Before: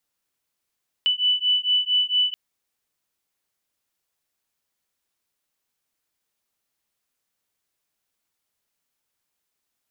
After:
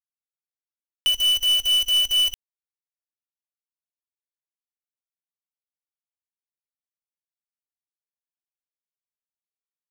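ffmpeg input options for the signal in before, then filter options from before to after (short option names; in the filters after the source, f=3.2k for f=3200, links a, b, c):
-f lavfi -i "aevalsrc='0.0841*(sin(2*PI*2980*t)+sin(2*PI*2984.4*t))':d=1.28:s=44100"
-filter_complex "[0:a]equalizer=f=2.5k:w=0.38:g=-3.5,asplit=2[a][b];[b]adynamicsmooth=sensitivity=5.5:basefreq=2.5k,volume=-1dB[c];[a][c]amix=inputs=2:normalize=0,acrusher=bits=5:dc=4:mix=0:aa=0.000001"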